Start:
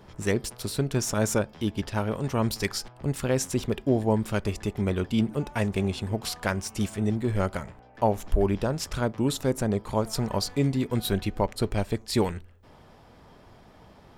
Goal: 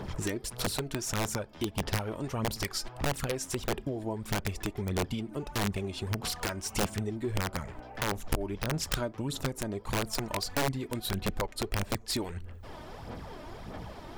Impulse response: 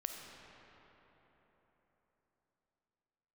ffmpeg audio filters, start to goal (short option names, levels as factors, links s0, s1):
-af "acompressor=threshold=0.0141:ratio=10,aphaser=in_gain=1:out_gain=1:delay=3.3:decay=0.51:speed=1.6:type=sinusoidal,aeval=exprs='(mod(26.6*val(0)+1,2)-1)/26.6':c=same,volume=2.24"